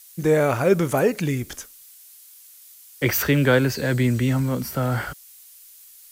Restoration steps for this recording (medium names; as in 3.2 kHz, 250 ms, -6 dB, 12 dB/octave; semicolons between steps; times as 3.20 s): noise reduction 19 dB, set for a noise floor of -48 dBFS